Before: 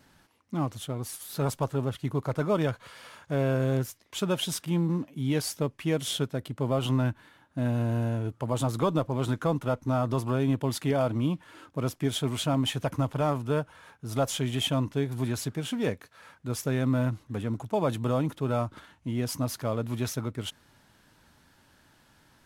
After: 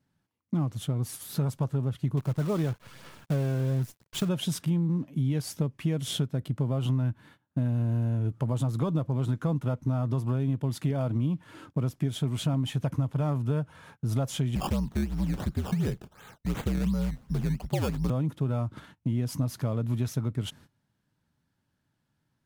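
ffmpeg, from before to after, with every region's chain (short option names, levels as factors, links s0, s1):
-filter_complex "[0:a]asettb=1/sr,asplit=3[s0][s1][s2];[s0]atrim=end=2.174[s3];[s1]atrim=start=2.17:end=4.29,asetpts=PTS-STARTPTS,afade=t=in:d=0.004:c=qsin,afade=t=out:st=2.116:d=0.004:c=qsin,acrusher=bits=7:dc=4:mix=0:aa=0.000001,aphaser=in_gain=1:out_gain=1:delay=2.7:decay=0.26:speed=1.1:type=sinusoidal[s4];[s2]atrim=start=4.286[s5];[s3][s4]acrossfade=d=0.004:c1=hsin:c2=qsin[s6];[s6][s5]acrossfade=d=0.004:c1=qsin:c2=hsin,asettb=1/sr,asplit=3[s7][s8][s9];[s7]atrim=end=14.554[s10];[s8]atrim=start=14.55:end=18.1,asetpts=PTS-STARTPTS,afade=t=in:d=0.004:c=qsin,afade=t=out:st=3.546:d=0.004:c=qsin,bandreject=f=400:w=8.8,acrusher=samples=15:mix=1:aa=0.000001:lfo=1:lforange=15:lforate=2.8,afreqshift=-69[s11];[s9]atrim=start=18.096[s12];[s10][s11]acrossfade=d=0.004:c1=hsin:c2=qsin[s13];[s13][s12]acrossfade=d=0.004:c1=qsin:c2=hsin,agate=range=0.0891:threshold=0.00224:ratio=16:detection=peak,equalizer=f=140:w=0.72:g=12,acompressor=threshold=0.0562:ratio=5"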